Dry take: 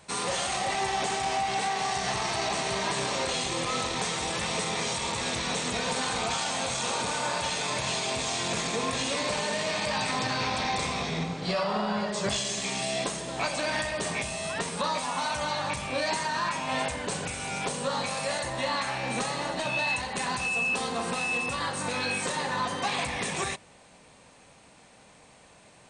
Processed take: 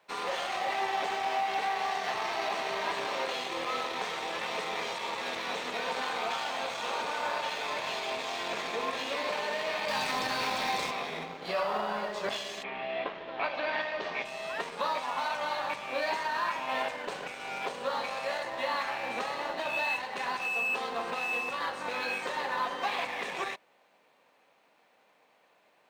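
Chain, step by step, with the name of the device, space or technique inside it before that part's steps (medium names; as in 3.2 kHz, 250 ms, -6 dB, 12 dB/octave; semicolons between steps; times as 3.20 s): phone line with mismatched companding (band-pass 390–3200 Hz; companding laws mixed up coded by A); 9.88–10.91 s: tone controls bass +7 dB, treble +9 dB; 12.62–14.24 s: low-pass 2.5 kHz -> 5.7 kHz 24 dB/octave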